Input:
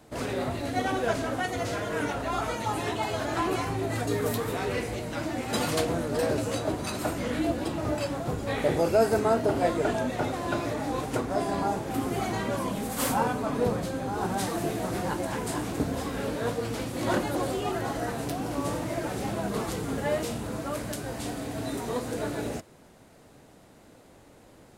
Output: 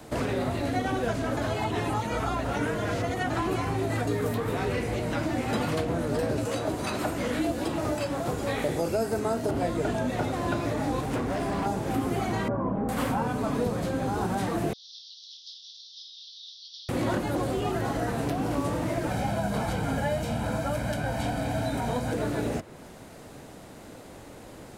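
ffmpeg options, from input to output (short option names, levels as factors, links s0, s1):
-filter_complex "[0:a]asettb=1/sr,asplit=3[s0][s1][s2];[s0]atrim=end=6.454[s3];[s1]atrim=start=6.45:end=9.51,asetpts=PTS-STARTPTS,afade=t=in:d=0.004:c=qsin,afade=t=out:st=3.056:d=0.004:c=qsin,bass=f=250:g=-8,treble=f=4000:g=10[s4];[s2]atrim=start=9.506[s5];[s3][s4]acrossfade=d=0.004:c1=hsin:c2=qsin[s6];[s6][s5]acrossfade=d=0.004:c1=qsin:c2=hsin,asettb=1/sr,asplit=3[s7][s8][s9];[s7]atrim=end=11.014[s10];[s8]atrim=start=11.01:end=11.66,asetpts=PTS-STARTPTS,afade=t=in:d=0.004:c=qsin,afade=t=out:st=0.646:d=0.004:c=qsin,volume=29.9,asoftclip=hard,volume=0.0335[s11];[s9]atrim=start=11.656[s12];[s10][s11]acrossfade=d=0.004:c1=hsin:c2=qsin[s13];[s13][s12]acrossfade=d=0.004:c1=qsin:c2=hsin,asettb=1/sr,asplit=3[s14][s15][s16];[s14]atrim=end=12.484[s17];[s15]atrim=start=12.48:end=12.89,asetpts=PTS-STARTPTS,afade=t=in:d=0.004:c=qsin,afade=t=out:st=0.406:d=0.004:c=qsin,lowpass=f=1300:w=0.5412,lowpass=f=1300:w=1.3066[s18];[s16]atrim=start=12.886[s19];[s17][s18]acrossfade=d=0.004:c1=hsin:c2=qsin[s20];[s20][s19]acrossfade=d=0.004:c1=qsin:c2=hsin,asettb=1/sr,asplit=3[s21][s22][s23];[s21]atrim=end=14.734[s24];[s22]atrim=start=14.73:end=16.89,asetpts=PTS-STARTPTS,afade=t=in:d=0.004:c=qsin,afade=t=out:st=2.156:d=0.004:c=qsin,asuperpass=centerf=4400:order=12:qfactor=1.8[s25];[s23]atrim=start=16.886[s26];[s24][s25]acrossfade=d=0.004:c1=hsin:c2=qsin[s27];[s27][s26]acrossfade=d=0.004:c1=qsin:c2=hsin,asettb=1/sr,asplit=3[s28][s29][s30];[s28]atrim=end=19.114[s31];[s29]atrim=start=19.11:end=22.13,asetpts=PTS-STARTPTS,afade=t=in:d=0.004:c=qsin,afade=t=out:st=3.016:d=0.004:c=qsin,aecho=1:1:1.3:0.67,atrim=end_sample=133182[s32];[s30]atrim=start=22.126[s33];[s31][s32]acrossfade=d=0.004:c1=hsin:c2=qsin[s34];[s34][s33]acrossfade=d=0.004:c1=qsin:c2=hsin,asplit=3[s35][s36][s37];[s35]atrim=end=1.372[s38];[s36]atrim=start=1.368:end=3.302,asetpts=PTS-STARTPTS,areverse[s39];[s37]atrim=start=3.298[s40];[s38][s39]acrossfade=d=0.004:c1=hsin:c2=hsin[s41];[s41][s40]acrossfade=d=0.004:c1=hsin:c2=hsin,acrossover=split=240|3200[s42][s43][s44];[s42]acompressor=threshold=0.0112:ratio=4[s45];[s43]acompressor=threshold=0.0126:ratio=4[s46];[s44]acompressor=threshold=0.00141:ratio=4[s47];[s45][s46][s47]amix=inputs=3:normalize=0,volume=2.66"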